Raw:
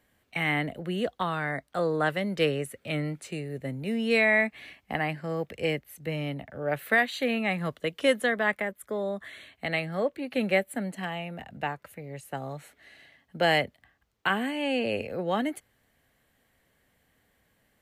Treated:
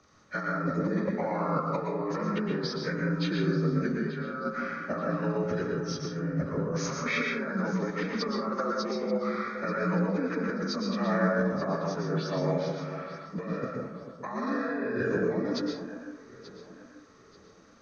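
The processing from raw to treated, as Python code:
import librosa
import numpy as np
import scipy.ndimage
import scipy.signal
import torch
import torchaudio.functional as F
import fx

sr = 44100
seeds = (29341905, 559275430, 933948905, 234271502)

p1 = fx.partial_stretch(x, sr, pct=80)
p2 = fx.low_shelf(p1, sr, hz=350.0, db=6.5, at=(5.45, 6.74))
p3 = fx.over_compress(p2, sr, threshold_db=-36.0, ratio=-1.0)
p4 = p3 + fx.echo_alternate(p3, sr, ms=442, hz=1100.0, feedback_pct=57, wet_db=-10.5, dry=0)
p5 = fx.rev_plate(p4, sr, seeds[0], rt60_s=0.63, hf_ratio=0.45, predelay_ms=105, drr_db=0.0)
y = p5 * librosa.db_to_amplitude(2.5)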